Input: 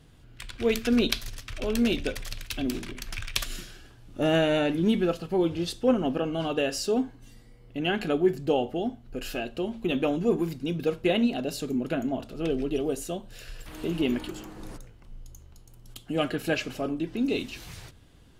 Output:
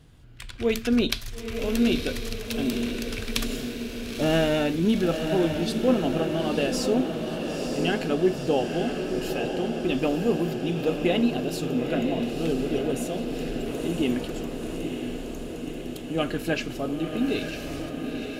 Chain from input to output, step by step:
parametric band 81 Hz +3 dB 2.4 octaves
feedback delay with all-pass diffusion 945 ms, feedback 70%, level −6 dB

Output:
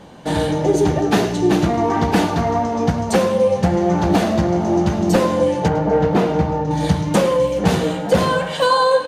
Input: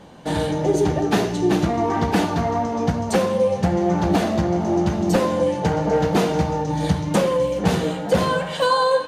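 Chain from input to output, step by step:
0:05.68–0:06.71: parametric band 11,000 Hz −13.5 dB 2.5 octaves
single-tap delay 105 ms −16 dB
level +3 dB

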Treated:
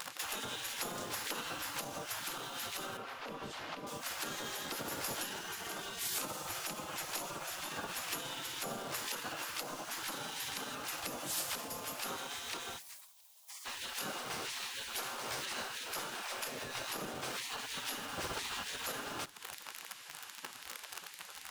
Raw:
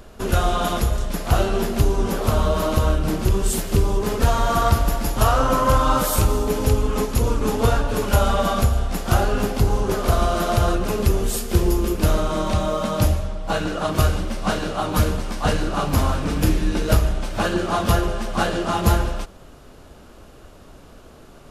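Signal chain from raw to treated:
in parallel at −3 dB: bit reduction 6 bits
on the sum: brickwall limiter −8.5 dBFS, peak gain reduction 7 dB
downward compressor 6 to 1, threshold −32 dBFS, peak gain reduction 18 dB
0:02.97–0:03.87: high-frequency loss of the air 240 metres
0:12.78–0:13.66: Butterworth high-pass 1,500 Hz 36 dB per octave
0:18.11–0:18.68: frequency shifter −23 Hz
gate on every frequency bin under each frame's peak −20 dB weak
delay with a high-pass on its return 335 ms, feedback 81%, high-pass 4,100 Hz, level −23.5 dB
on a send at −22 dB: convolution reverb RT60 0.75 s, pre-delay 4 ms
on the sum: level +5 dB

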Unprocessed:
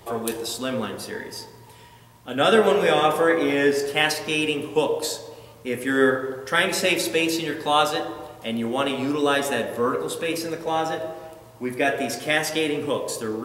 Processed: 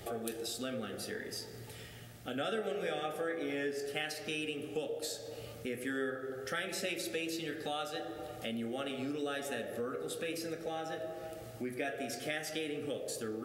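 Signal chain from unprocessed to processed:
downward compressor 3 to 1, threshold −40 dBFS, peak gain reduction 20 dB
Butterworth band-reject 990 Hz, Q 2.7

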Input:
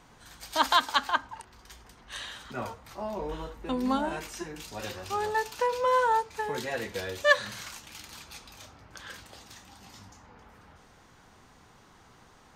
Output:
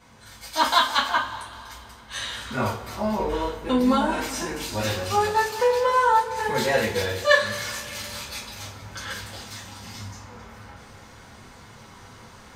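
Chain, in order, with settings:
speech leveller within 3 dB 0.5 s
coupled-rooms reverb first 0.28 s, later 2.7 s, from −21 dB, DRR −7 dB

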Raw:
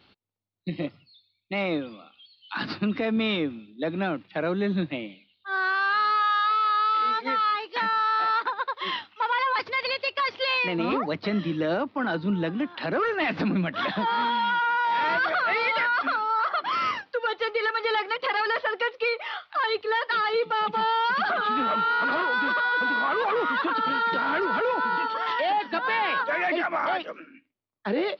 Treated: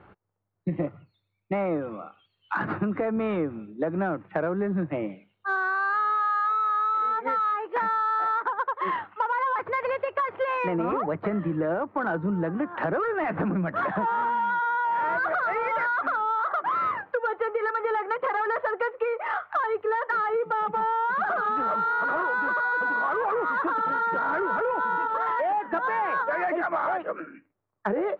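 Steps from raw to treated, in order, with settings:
low-pass filter 1,600 Hz 24 dB per octave
parametric band 250 Hz −10 dB 0.4 octaves
downward compressor 8 to 1, threshold −34 dBFS, peak gain reduction 12 dB
in parallel at −10 dB: soft clipping −34 dBFS, distortion −16 dB
on the sum: level +8.5 dB

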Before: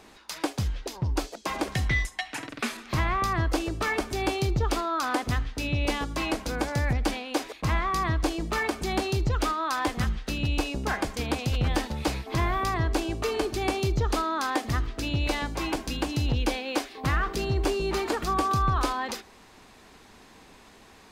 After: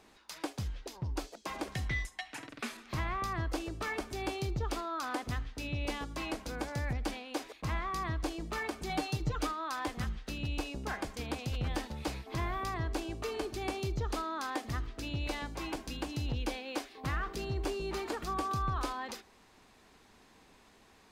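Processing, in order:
0:08.89–0:09.47: comb filter 6.6 ms, depth 79%
level −9 dB

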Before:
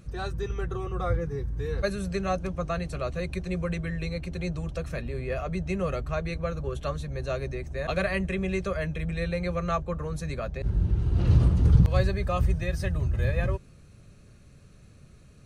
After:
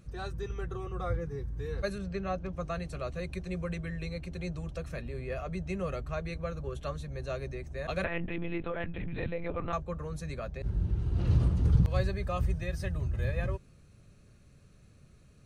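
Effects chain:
0:01.98–0:02.53: high-frequency loss of the air 140 metres
0:08.04–0:09.73: one-pitch LPC vocoder at 8 kHz 170 Hz
level −5.5 dB

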